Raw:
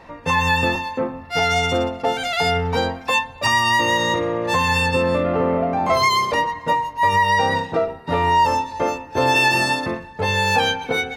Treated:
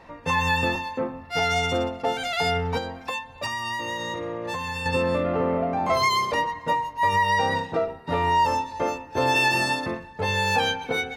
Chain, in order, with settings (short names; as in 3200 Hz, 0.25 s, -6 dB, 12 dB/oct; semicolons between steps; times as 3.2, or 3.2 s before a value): 2.77–4.86 compressor, threshold -23 dBFS, peak gain reduction 9 dB; gain -4.5 dB